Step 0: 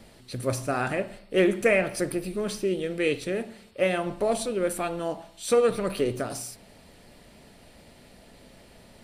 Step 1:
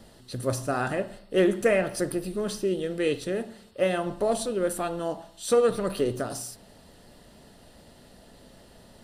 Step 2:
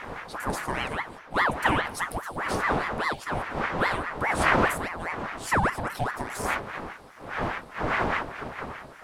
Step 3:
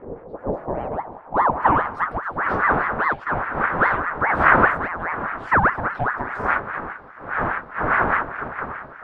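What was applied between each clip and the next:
peaking EQ 2.3 kHz -13 dB 0.22 oct
wind noise 620 Hz -29 dBFS; ring modulator with a swept carrier 940 Hz, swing 70%, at 4.9 Hz
low-pass sweep 440 Hz -> 1.5 kHz, 0.12–2.20 s; trim +3 dB

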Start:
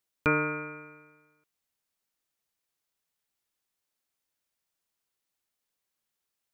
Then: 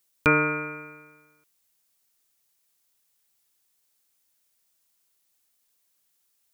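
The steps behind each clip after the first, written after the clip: treble shelf 4.5 kHz +10.5 dB; trim +4.5 dB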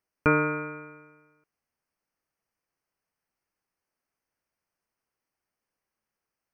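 boxcar filter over 12 samples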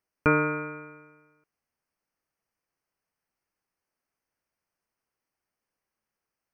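no audible change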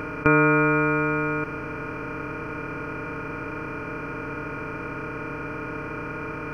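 spectral levelling over time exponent 0.2; trim +2 dB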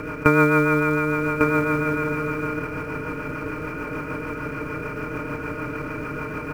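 rotary cabinet horn 6.7 Hz; in parallel at -6 dB: short-mantissa float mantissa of 2-bit; on the sum: delay 1150 ms -4.5 dB

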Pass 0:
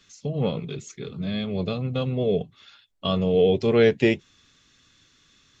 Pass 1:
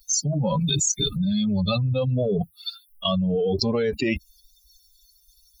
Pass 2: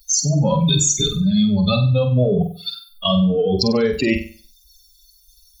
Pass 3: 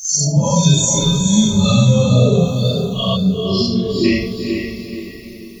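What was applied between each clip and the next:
expander on every frequency bin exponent 3; peak limiter -21.5 dBFS, peak gain reduction 11 dB; level flattener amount 100%; trim +3 dB
flutter echo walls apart 8.2 m, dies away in 0.41 s; trim +4.5 dB
phase randomisation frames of 200 ms; time-frequency box 3.16–4.05 s, 450–3400 Hz -26 dB; echo that smears into a reverb 461 ms, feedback 43%, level -5 dB; trim +2 dB

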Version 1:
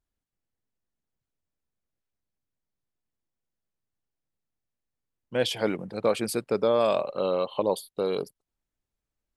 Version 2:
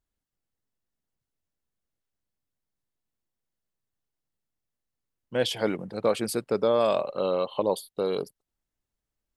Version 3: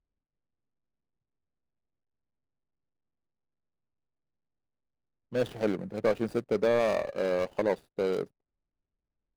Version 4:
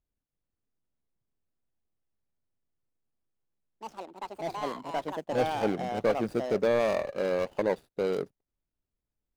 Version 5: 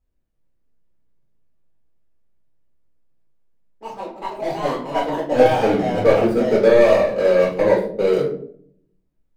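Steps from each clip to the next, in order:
band-stop 2.4 kHz, Q 18
median filter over 41 samples
ever faster or slower copies 412 ms, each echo +5 st, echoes 2, each echo -6 dB
flange 1.4 Hz, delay 3.9 ms, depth 3 ms, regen -47%; reverberation RT60 0.60 s, pre-delay 4 ms, DRR -6 dB; tape noise reduction on one side only decoder only; trim +6.5 dB

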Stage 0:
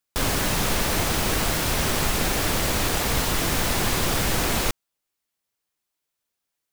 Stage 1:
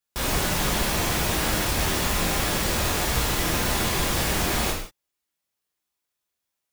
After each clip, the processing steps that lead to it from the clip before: gated-style reverb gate 210 ms falling, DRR -4 dB; trim -6 dB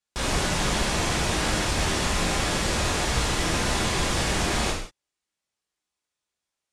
low-pass 9.3 kHz 24 dB/octave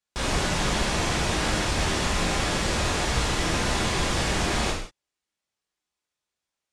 treble shelf 12 kHz -9.5 dB

